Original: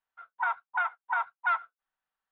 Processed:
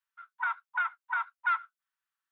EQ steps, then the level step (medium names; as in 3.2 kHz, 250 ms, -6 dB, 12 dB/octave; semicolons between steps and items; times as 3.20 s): high-pass 1.1 kHz 24 dB/octave; 0.0 dB